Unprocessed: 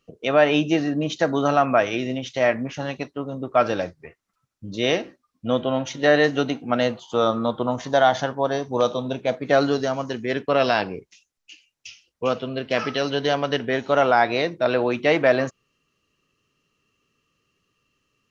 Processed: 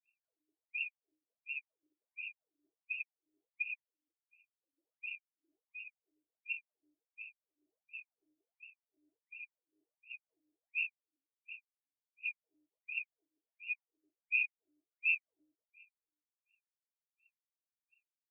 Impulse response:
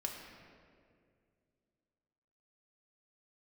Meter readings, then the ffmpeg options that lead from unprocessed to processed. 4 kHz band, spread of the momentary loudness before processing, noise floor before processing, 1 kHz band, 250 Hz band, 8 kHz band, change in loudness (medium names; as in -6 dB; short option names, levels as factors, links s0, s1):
under -25 dB, 10 LU, -77 dBFS, under -40 dB, under -40 dB, no reading, -17.5 dB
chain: -filter_complex "[0:a]lowpass=f=3100:t=q:w=1.7[s0];[1:a]atrim=start_sample=2205,asetrate=74970,aresample=44100[s1];[s0][s1]afir=irnorm=-1:irlink=0,afftfilt=real='re*(1-between(b*sr/4096,140,2400))':imag='im*(1-between(b*sr/4096,140,2400))':win_size=4096:overlap=0.75,acrossover=split=120|2200[s2][s3][s4];[s2]acompressor=threshold=0.002:ratio=20[s5];[s5][s3][s4]amix=inputs=3:normalize=0,afftfilt=real='re*between(b*sr/1024,380*pow(2000/380,0.5+0.5*sin(2*PI*1.4*pts/sr))/1.41,380*pow(2000/380,0.5+0.5*sin(2*PI*1.4*pts/sr))*1.41)':imag='im*between(b*sr/1024,380*pow(2000/380,0.5+0.5*sin(2*PI*1.4*pts/sr))/1.41,380*pow(2000/380,0.5+0.5*sin(2*PI*1.4*pts/sr))*1.41)':win_size=1024:overlap=0.75,volume=1.58"